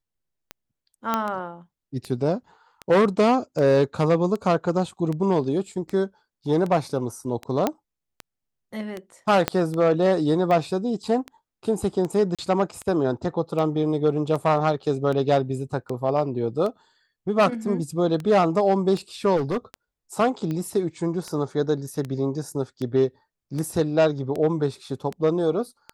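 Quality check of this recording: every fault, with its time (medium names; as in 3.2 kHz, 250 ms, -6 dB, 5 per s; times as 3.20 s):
tick 78 rpm -18 dBFS
1.14 s: pop -9 dBFS
7.67 s: pop -8 dBFS
9.48 s: pop -6 dBFS
12.35–12.39 s: dropout 36 ms
19.36–19.58 s: clipped -21 dBFS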